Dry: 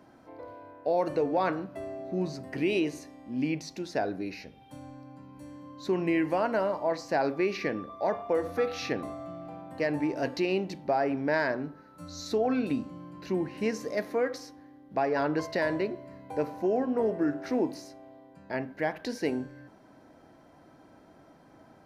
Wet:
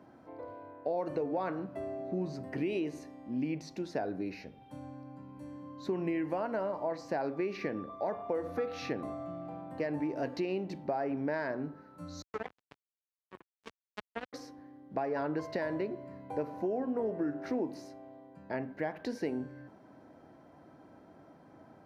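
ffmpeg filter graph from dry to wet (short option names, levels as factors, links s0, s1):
-filter_complex "[0:a]asettb=1/sr,asplit=3[s0][s1][s2];[s0]atrim=end=12.224[s3];[s1]atrim=start=12.22:end=14.33,asetpts=PTS-STARTPTS,afade=t=in:d=0.004:c=qsin,afade=t=out:st=2.106:d=0.004:c=qsin,aecho=1:1:2.6:0.54,atrim=end_sample=93051,acrusher=bits=2:mix=0:aa=0.5[s4];[s2]atrim=start=14.326[s5];[s3][s4]acrossfade=d=0.004:c1=hsin:c2=qsin[s6];[s6][s5]acrossfade=d=0.004:c1=qsin:c2=hsin,acompressor=threshold=0.0282:ratio=3,highpass=66,highshelf=f=2300:g=-9"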